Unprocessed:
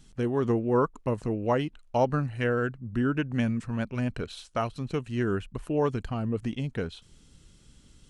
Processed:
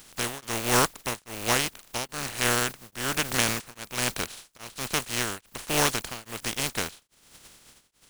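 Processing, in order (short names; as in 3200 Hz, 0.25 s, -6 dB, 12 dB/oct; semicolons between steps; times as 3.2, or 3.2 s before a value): spectral contrast lowered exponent 0.24; beating tremolo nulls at 1.2 Hz; gain +2.5 dB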